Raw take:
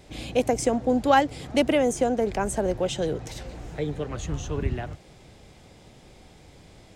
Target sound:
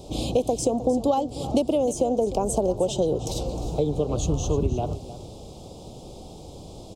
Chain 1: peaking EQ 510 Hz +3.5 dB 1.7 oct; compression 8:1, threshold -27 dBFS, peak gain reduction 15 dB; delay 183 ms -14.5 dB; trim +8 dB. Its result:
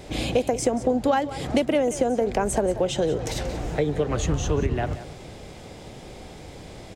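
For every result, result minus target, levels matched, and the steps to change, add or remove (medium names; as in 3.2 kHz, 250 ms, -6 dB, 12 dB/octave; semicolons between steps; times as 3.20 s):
2 kHz band +16.5 dB; echo 125 ms early
add after compression: Butterworth band-stop 1.8 kHz, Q 0.76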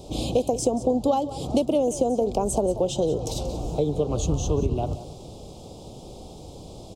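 echo 125 ms early
change: delay 308 ms -14.5 dB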